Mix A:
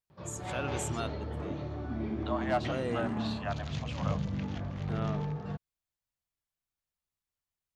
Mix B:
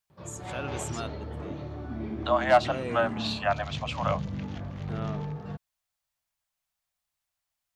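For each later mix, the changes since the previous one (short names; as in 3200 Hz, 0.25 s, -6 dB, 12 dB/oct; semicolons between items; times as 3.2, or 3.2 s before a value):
second voice +10.5 dB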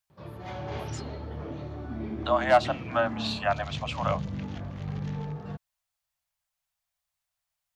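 first voice: add inverse Chebyshev band-stop 350–8000 Hz, stop band 40 dB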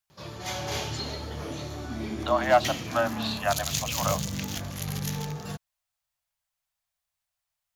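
background: remove tape spacing loss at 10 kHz 41 dB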